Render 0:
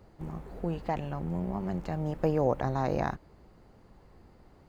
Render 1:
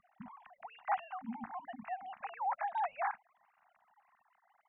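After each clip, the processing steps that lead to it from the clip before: sine-wave speech; elliptic band-stop 220–740 Hz, stop band 40 dB; gain -1.5 dB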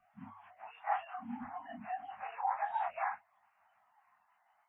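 phase scrambler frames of 0.1 s; bell 100 Hz +14.5 dB 0.21 oct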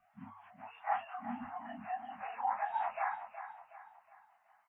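feedback echo 0.369 s, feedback 41%, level -11 dB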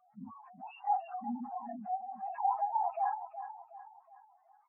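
spectral contrast raised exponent 3; gain +4 dB

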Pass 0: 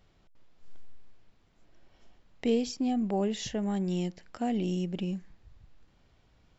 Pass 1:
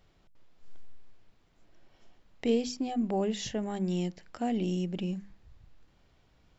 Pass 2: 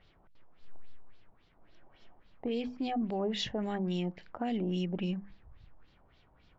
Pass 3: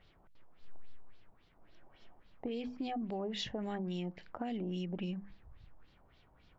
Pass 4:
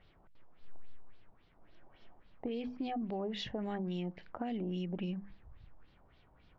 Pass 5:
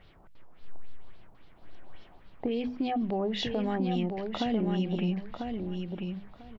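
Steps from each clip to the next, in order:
notches 50/100/150/200/250 Hz
limiter -26.5 dBFS, peak gain reduction 10 dB; LFO low-pass sine 3.6 Hz 840–4400 Hz
compressor, threshold -34 dBFS, peak gain reduction 6 dB; gain -1 dB
air absorption 120 m; gain +1 dB
hard clip -28 dBFS, distortion -42 dB; on a send: feedback echo 0.995 s, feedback 18%, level -5.5 dB; on the sum: gain +7.5 dB

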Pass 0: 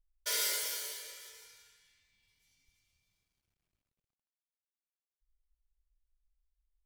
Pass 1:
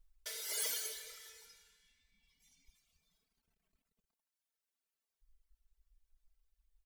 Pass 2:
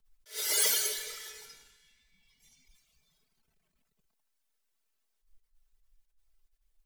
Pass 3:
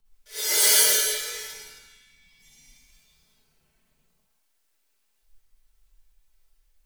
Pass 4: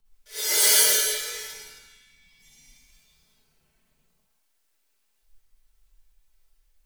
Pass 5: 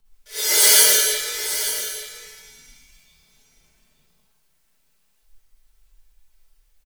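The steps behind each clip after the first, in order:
reverb removal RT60 1.9 s; comb 4.5 ms, depth 85%; negative-ratio compressor -40 dBFS, ratio -1
frequency shift -15 Hz; in parallel at -4 dB: backlash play -55.5 dBFS; on the sum: attack slew limiter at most 210 dB/s; gain +6.5 dB
non-linear reverb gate 0.28 s flat, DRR -6.5 dB; gain +2.5 dB
nothing audible
echo 0.881 s -11.5 dB; gain +5 dB

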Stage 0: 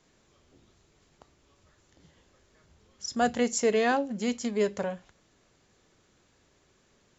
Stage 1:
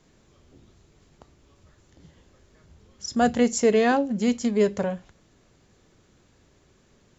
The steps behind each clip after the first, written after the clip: low shelf 370 Hz +7.5 dB; gain +2 dB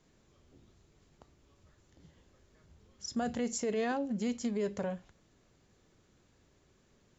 limiter -18 dBFS, peak gain reduction 9 dB; gain -7.5 dB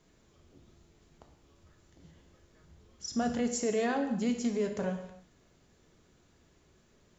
non-linear reverb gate 0.31 s falling, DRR 5 dB; gain +1.5 dB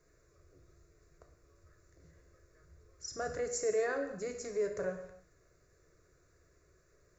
fixed phaser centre 850 Hz, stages 6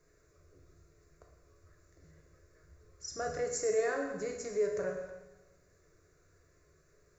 plate-style reverb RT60 1.1 s, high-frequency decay 1×, DRR 5 dB

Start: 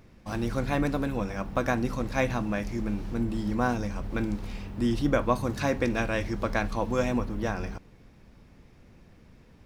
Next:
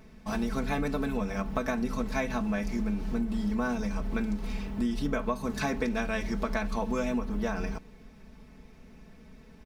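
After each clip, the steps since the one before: comb 4.6 ms, depth 85%; compressor 6:1, threshold -26 dBFS, peak gain reduction 11 dB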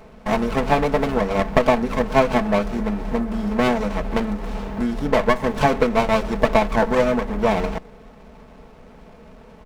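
band shelf 920 Hz +11 dB 2.3 oct; running maximum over 17 samples; gain +5.5 dB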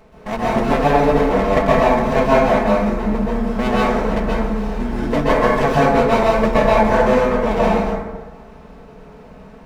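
plate-style reverb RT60 1.2 s, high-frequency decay 0.45×, pre-delay 0.115 s, DRR -7 dB; gain -4 dB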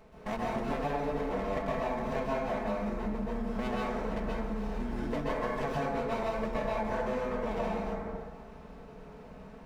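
compressor 4:1, threshold -23 dBFS, peak gain reduction 12 dB; gain -8 dB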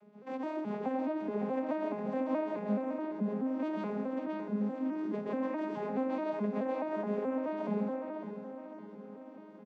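arpeggiated vocoder major triad, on G#3, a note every 0.213 s; feedback echo 0.558 s, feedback 43%, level -9.5 dB; gain -1 dB

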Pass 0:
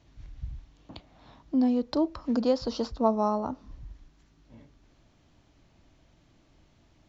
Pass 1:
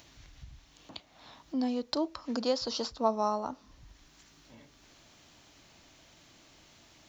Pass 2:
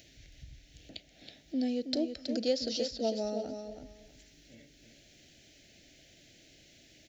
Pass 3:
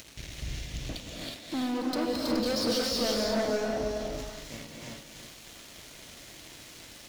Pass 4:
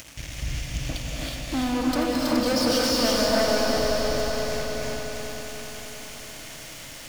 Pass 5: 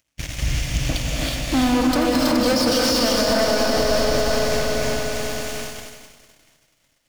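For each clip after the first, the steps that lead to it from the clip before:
tilt +3 dB/oct; in parallel at -2 dB: upward compressor, threshold -40 dBFS; on the sum: gain -6.5 dB
Chebyshev band-stop 590–1900 Hz, order 2; feedback echo 0.323 s, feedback 19%, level -7.5 dB
sample leveller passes 5; limiter -26 dBFS, peak gain reduction 8 dB; non-linear reverb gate 0.39 s rising, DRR -2 dB; gain -3 dB
regenerating reverse delay 0.165 s, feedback 78%, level -11 dB; thirty-one-band EQ 200 Hz -6 dB, 400 Hz -10 dB, 4000 Hz -7 dB; swelling echo 96 ms, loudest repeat 5, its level -13 dB; gain +6.5 dB
gate -35 dBFS, range -37 dB; limiter -17 dBFS, peak gain reduction 7 dB; gain +7.5 dB

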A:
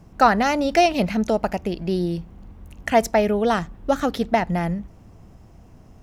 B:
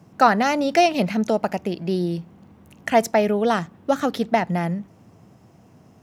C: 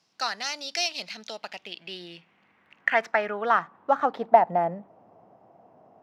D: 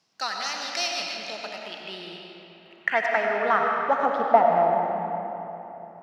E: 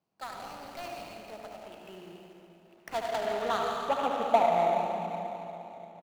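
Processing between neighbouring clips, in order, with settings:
HPF 110 Hz 24 dB/oct
median filter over 5 samples; band-pass sweep 4800 Hz -> 700 Hz, 0.99–4.62; gain +6 dB
digital reverb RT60 3.4 s, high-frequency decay 0.65×, pre-delay 50 ms, DRR 0 dB; gain -1 dB
median filter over 25 samples; echo 75 ms -8.5 dB; gain -5 dB

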